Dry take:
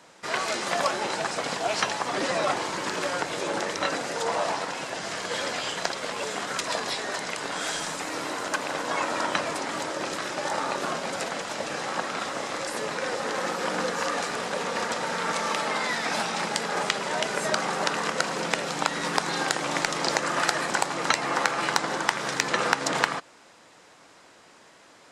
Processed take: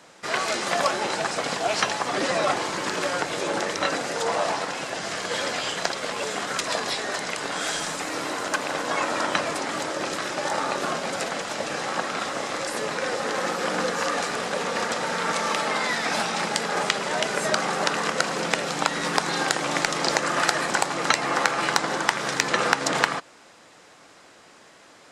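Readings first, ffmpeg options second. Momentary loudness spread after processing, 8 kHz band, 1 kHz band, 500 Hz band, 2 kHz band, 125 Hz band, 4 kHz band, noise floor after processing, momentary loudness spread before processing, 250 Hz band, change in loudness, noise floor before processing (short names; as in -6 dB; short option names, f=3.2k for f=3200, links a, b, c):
6 LU, +2.5 dB, +2.0 dB, +2.5 dB, +2.5 dB, +2.5 dB, +2.5 dB, -51 dBFS, 6 LU, +2.5 dB, +2.5 dB, -54 dBFS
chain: -af "bandreject=f=950:w=22,volume=2.5dB"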